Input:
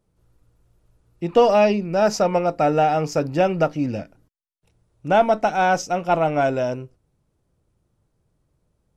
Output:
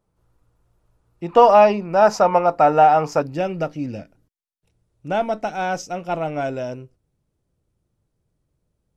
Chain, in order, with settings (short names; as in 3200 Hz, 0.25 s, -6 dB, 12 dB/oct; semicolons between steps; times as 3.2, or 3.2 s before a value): bell 1000 Hz +6.5 dB 1.4 oct, from 1.34 s +13.5 dB, from 3.22 s -3 dB; gain -3.5 dB